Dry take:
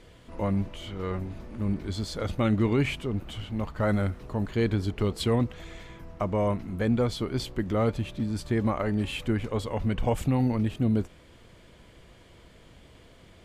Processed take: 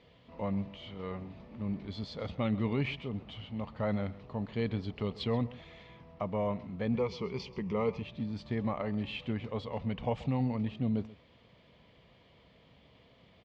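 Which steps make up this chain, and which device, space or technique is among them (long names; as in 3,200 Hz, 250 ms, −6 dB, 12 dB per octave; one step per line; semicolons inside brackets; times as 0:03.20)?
0:06.94–0:08.02: EQ curve with evenly spaced ripples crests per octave 0.8, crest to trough 12 dB
guitar cabinet (loudspeaker in its box 85–4,400 Hz, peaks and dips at 91 Hz −5 dB, 340 Hz −9 dB, 1,500 Hz −9 dB)
single-tap delay 132 ms −19 dB
level −5 dB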